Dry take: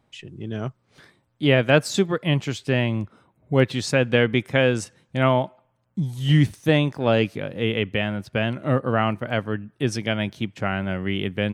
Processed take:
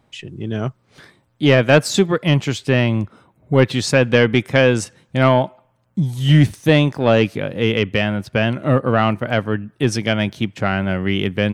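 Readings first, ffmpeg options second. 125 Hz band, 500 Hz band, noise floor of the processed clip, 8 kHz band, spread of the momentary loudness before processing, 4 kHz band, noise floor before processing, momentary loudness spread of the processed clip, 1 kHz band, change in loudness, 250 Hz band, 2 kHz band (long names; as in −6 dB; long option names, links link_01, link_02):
+5.5 dB, +5.5 dB, −62 dBFS, +6.5 dB, 12 LU, +5.0 dB, −68 dBFS, 11 LU, +5.5 dB, +5.5 dB, +5.5 dB, +5.0 dB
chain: -af "acontrast=61"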